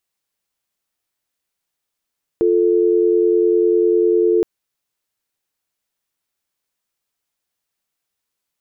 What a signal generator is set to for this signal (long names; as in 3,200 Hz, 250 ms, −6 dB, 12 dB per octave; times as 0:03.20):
call progress tone dial tone, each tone −14.5 dBFS 2.02 s